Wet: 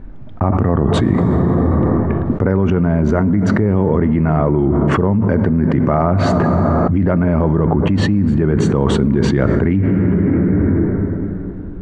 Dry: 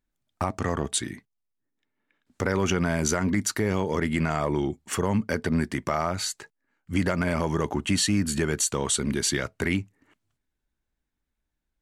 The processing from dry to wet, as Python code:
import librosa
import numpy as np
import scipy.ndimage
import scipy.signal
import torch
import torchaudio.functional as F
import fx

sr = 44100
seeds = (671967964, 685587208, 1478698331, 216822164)

p1 = scipy.signal.sosfilt(scipy.signal.butter(2, 1200.0, 'lowpass', fs=sr, output='sos'), x)
p2 = fx.rev_plate(p1, sr, seeds[0], rt60_s=3.1, hf_ratio=0.45, predelay_ms=0, drr_db=13.5)
p3 = fx.rider(p2, sr, range_db=10, speed_s=2.0)
p4 = p2 + (p3 * 10.0 ** (1.5 / 20.0))
p5 = fx.low_shelf(p4, sr, hz=400.0, db=9.5)
p6 = fx.env_flatten(p5, sr, amount_pct=100)
y = p6 * 10.0 ** (-8.0 / 20.0)